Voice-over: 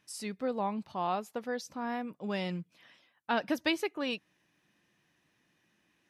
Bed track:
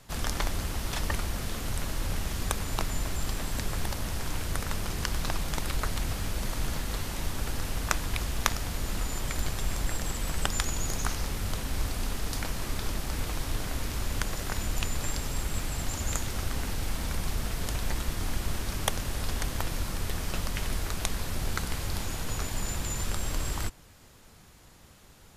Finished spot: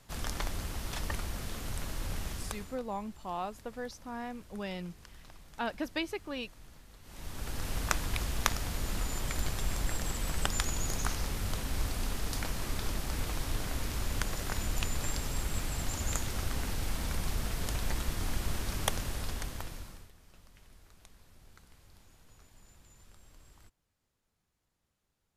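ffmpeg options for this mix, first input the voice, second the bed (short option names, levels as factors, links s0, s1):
-filter_complex "[0:a]adelay=2300,volume=0.596[s0];[1:a]volume=5.62,afade=t=out:st=2.28:d=0.51:silence=0.133352,afade=t=in:st=7.02:d=0.74:silence=0.0944061,afade=t=out:st=18.94:d=1.17:silence=0.0595662[s1];[s0][s1]amix=inputs=2:normalize=0"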